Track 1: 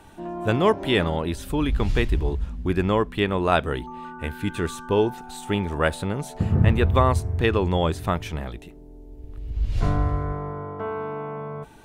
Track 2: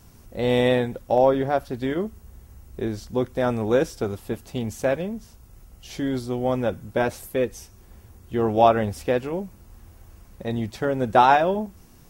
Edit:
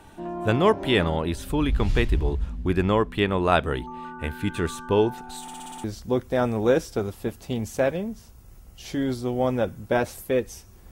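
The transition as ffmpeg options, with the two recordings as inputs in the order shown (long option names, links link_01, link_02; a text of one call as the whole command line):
ffmpeg -i cue0.wav -i cue1.wav -filter_complex "[0:a]apad=whole_dur=10.91,atrim=end=10.91,asplit=7[link_01][link_02][link_03][link_04][link_05][link_06][link_07];[link_01]atrim=end=5.482[link_08];[link_02]atrim=start=5.418:end=5.482[link_09];[link_03]atrim=start=5.418:end=5.482[link_10];[link_04]atrim=start=5.418:end=5.482[link_11];[link_05]atrim=start=5.418:end=5.482[link_12];[link_06]atrim=start=5.418:end=5.482[link_13];[link_07]atrim=start=5.418:end=5.482[link_14];[1:a]atrim=start=2.888:end=7.96[link_15];[link_08][link_09]acrossfade=duration=0.004:curve1=hsin:curve2=hsin[link_16];[link_16][link_10]acrossfade=duration=0.004:curve1=hsin:curve2=hsin[link_17];[link_17][link_11]acrossfade=duration=0.004:curve1=hsin:curve2=hsin[link_18];[link_18][link_12]acrossfade=duration=0.004:curve1=hsin:curve2=hsin[link_19];[link_19][link_13]acrossfade=duration=0.004:curve1=hsin:curve2=hsin[link_20];[link_20][link_14]acrossfade=duration=0.004:curve1=hsin:curve2=hsin[link_21];[link_21][link_15]acrossfade=duration=0.004:curve1=hsin:curve2=hsin" out.wav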